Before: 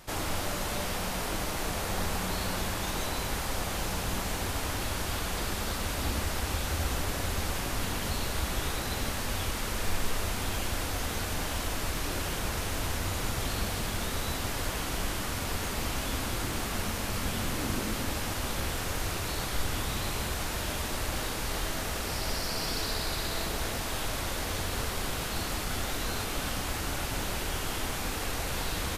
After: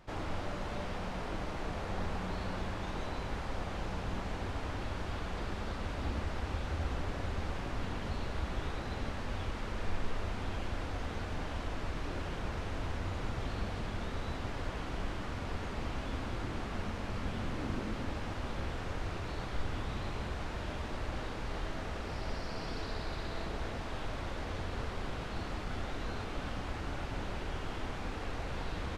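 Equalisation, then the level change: tape spacing loss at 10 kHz 24 dB; -3.5 dB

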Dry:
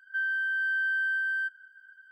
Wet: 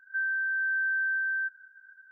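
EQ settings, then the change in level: brick-wall FIR low-pass 1900 Hz; 0.0 dB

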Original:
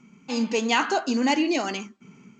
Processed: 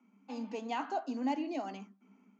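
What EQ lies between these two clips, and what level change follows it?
dynamic EQ 1600 Hz, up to -4 dB, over -37 dBFS, Q 0.92; rippled Chebyshev high-pass 190 Hz, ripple 9 dB; high shelf 4300 Hz -11.5 dB; -7.0 dB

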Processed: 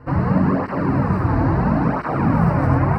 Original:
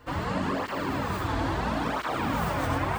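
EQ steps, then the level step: running mean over 13 samples; bell 150 Hz +11 dB 1.3 oct; +7.0 dB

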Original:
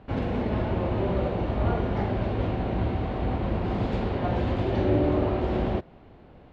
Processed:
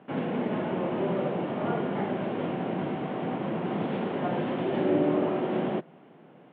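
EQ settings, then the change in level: Chebyshev band-pass 150–3300 Hz, order 4; 0.0 dB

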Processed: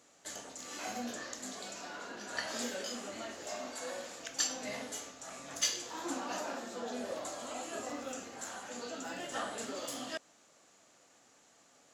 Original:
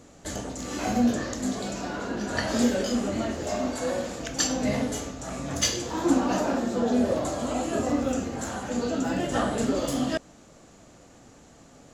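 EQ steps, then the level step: HPF 1200 Hz 6 dB/oct; -6.0 dB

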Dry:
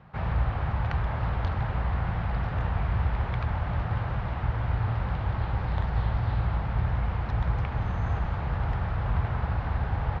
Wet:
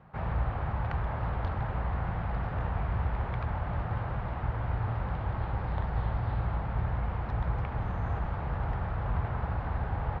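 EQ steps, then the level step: bell 84 Hz -4.5 dB 2.9 oct; high shelf 2300 Hz -11 dB; 0.0 dB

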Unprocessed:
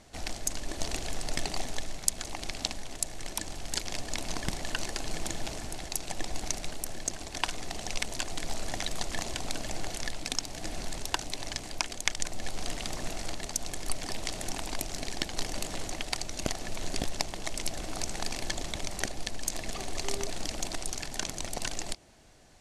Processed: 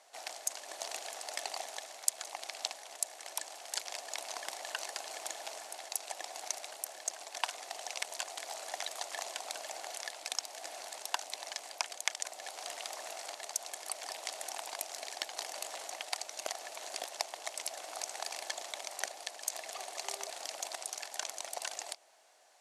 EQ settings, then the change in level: ladder high-pass 540 Hz, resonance 35%; high shelf 9900 Hz +6.5 dB; +2.0 dB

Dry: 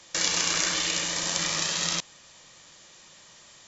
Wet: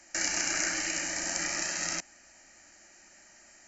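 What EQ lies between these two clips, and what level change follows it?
fixed phaser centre 710 Hz, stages 8; 0.0 dB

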